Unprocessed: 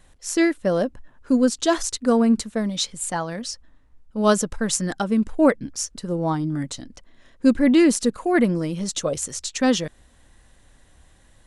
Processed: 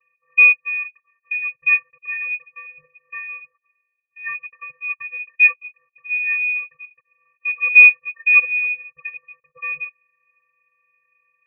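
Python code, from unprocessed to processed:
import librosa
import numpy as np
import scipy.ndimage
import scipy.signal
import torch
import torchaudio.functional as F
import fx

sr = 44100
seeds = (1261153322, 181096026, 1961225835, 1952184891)

y = fx.vocoder(x, sr, bands=16, carrier='square', carrier_hz=328.0)
y = fx.freq_invert(y, sr, carrier_hz=2800)
y = y * 10.0 ** (2.5 / 20.0)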